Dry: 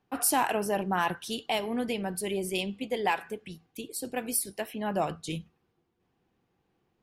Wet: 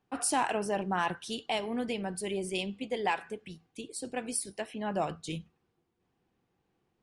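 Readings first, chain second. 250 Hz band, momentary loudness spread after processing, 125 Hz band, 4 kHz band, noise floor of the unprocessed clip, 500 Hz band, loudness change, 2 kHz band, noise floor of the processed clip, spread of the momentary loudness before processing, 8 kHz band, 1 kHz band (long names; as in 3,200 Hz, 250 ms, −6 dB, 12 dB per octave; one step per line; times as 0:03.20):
−2.5 dB, 11 LU, −2.5 dB, −2.5 dB, −76 dBFS, −2.5 dB, −3.0 dB, −2.5 dB, −79 dBFS, 11 LU, −3.5 dB, −2.5 dB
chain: downsampling to 22,050 Hz
level −2.5 dB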